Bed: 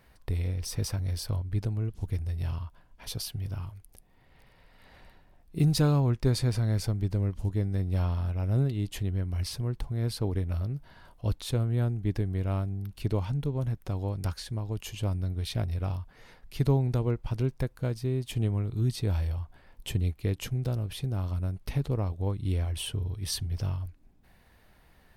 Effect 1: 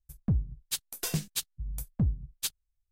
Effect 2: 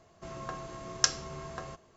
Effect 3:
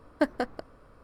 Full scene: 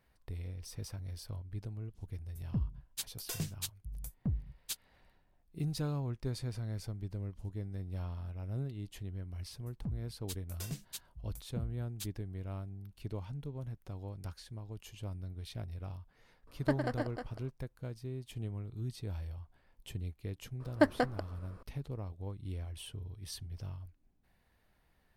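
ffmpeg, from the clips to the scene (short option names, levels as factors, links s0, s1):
-filter_complex "[1:a]asplit=2[s0][s1];[3:a]asplit=2[s2][s3];[0:a]volume=0.251[s4];[s2]aecho=1:1:107|155|312:0.473|0.178|0.501[s5];[s0]atrim=end=2.91,asetpts=PTS-STARTPTS,volume=0.447,afade=t=in:d=0.004:c=hsin,afade=t=out:st=2.906:d=0.004:c=hsin,adelay=2260[s6];[s1]atrim=end=2.91,asetpts=PTS-STARTPTS,volume=0.251,afade=t=in:d=0.004:c=hsin,afade=t=out:st=2.906:d=0.004:c=hsin,adelay=9570[s7];[s5]atrim=end=1.03,asetpts=PTS-STARTPTS,volume=0.447,afade=t=in:d=0.004:c=hsin,afade=t=out:st=1.026:d=0.004:c=hsin,adelay=16470[s8];[s3]atrim=end=1.03,asetpts=PTS-STARTPTS,volume=0.944,afade=t=in:d=0.004:c=hsin,afade=t=out:st=1.026:d=0.004:c=hsin,adelay=20600[s9];[s4][s6][s7][s8][s9]amix=inputs=5:normalize=0"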